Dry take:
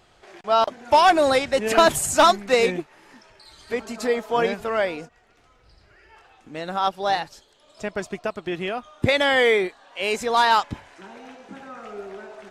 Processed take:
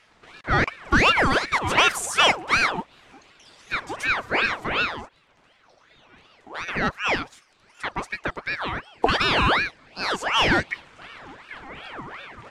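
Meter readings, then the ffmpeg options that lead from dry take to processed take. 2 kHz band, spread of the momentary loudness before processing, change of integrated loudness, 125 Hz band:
+3.5 dB, 20 LU, -1.0 dB, +4.5 dB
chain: -filter_complex "[0:a]asplit=2[a][b];[b]highpass=f=720:p=1,volume=7dB,asoftclip=type=tanh:threshold=-7.5dB[c];[a][c]amix=inputs=2:normalize=0,lowpass=f=2.5k:p=1,volume=-6dB,equalizer=f=125:t=o:w=1:g=12,equalizer=f=250:t=o:w=1:g=5,equalizer=f=8k:t=o:w=1:g=5,aeval=exprs='val(0)*sin(2*PI*1300*n/s+1300*0.6/2.7*sin(2*PI*2.7*n/s))':c=same"

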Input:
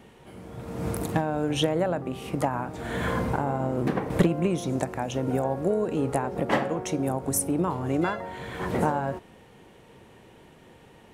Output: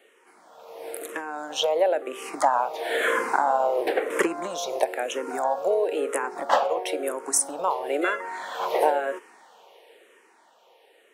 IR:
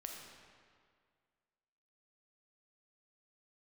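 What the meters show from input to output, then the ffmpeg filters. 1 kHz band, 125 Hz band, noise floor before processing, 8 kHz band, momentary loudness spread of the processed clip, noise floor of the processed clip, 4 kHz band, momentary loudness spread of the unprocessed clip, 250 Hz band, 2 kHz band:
+5.5 dB, under -25 dB, -53 dBFS, +5.0 dB, 11 LU, -59 dBFS, +3.5 dB, 9 LU, -9.0 dB, +6.0 dB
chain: -filter_complex "[0:a]highpass=f=440:w=0.5412,highpass=f=440:w=1.3066,dynaudnorm=f=210:g=17:m=11.5dB,asplit=2[a][b];[b]afreqshift=-1[c];[a][c]amix=inputs=2:normalize=1"

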